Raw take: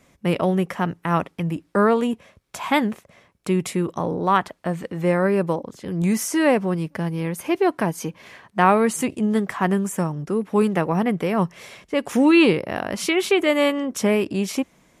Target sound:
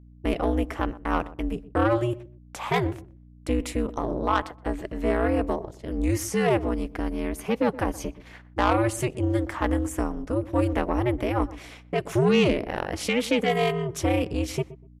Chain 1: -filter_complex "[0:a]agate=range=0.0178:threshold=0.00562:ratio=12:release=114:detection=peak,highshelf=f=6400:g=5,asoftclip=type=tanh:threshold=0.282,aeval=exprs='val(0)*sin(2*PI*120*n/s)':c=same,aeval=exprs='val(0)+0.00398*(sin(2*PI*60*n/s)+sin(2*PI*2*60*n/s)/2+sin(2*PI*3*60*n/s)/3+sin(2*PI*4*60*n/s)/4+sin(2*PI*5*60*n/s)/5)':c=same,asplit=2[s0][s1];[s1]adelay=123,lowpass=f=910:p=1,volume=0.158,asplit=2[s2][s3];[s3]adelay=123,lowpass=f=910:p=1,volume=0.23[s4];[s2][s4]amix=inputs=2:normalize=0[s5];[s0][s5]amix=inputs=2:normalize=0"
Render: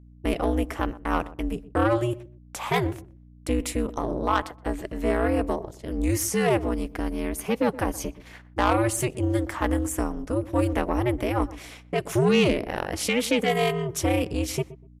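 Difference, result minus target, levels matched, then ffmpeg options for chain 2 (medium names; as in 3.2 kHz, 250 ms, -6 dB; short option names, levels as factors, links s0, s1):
8 kHz band +5.0 dB
-filter_complex "[0:a]agate=range=0.0178:threshold=0.00562:ratio=12:release=114:detection=peak,highshelf=f=6400:g=-4,asoftclip=type=tanh:threshold=0.282,aeval=exprs='val(0)*sin(2*PI*120*n/s)':c=same,aeval=exprs='val(0)+0.00398*(sin(2*PI*60*n/s)+sin(2*PI*2*60*n/s)/2+sin(2*PI*3*60*n/s)/3+sin(2*PI*4*60*n/s)/4+sin(2*PI*5*60*n/s)/5)':c=same,asplit=2[s0][s1];[s1]adelay=123,lowpass=f=910:p=1,volume=0.158,asplit=2[s2][s3];[s3]adelay=123,lowpass=f=910:p=1,volume=0.23[s4];[s2][s4]amix=inputs=2:normalize=0[s5];[s0][s5]amix=inputs=2:normalize=0"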